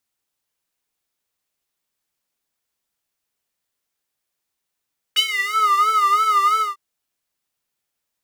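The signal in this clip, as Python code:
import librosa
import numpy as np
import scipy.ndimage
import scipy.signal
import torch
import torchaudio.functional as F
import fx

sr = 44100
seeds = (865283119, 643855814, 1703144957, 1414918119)

y = fx.sub_patch_vibrato(sr, seeds[0], note=68, wave='square', wave2='square', interval_st=0, detune_cents=17, level2_db=-9.0, sub_db=-28.5, noise_db=-30.0, kind='highpass', cutoff_hz=1100.0, q=7.2, env_oct=1.5, env_decay_s=0.47, env_sustain_pct=10, attack_ms=14.0, decay_s=0.09, sustain_db=-9.5, release_s=0.17, note_s=1.43, lfo_hz=3.0, vibrato_cents=97)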